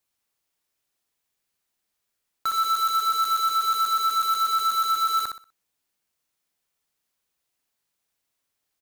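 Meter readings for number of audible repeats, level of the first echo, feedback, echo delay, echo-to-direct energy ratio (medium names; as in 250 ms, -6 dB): 3, -6.0 dB, 28%, 62 ms, -5.5 dB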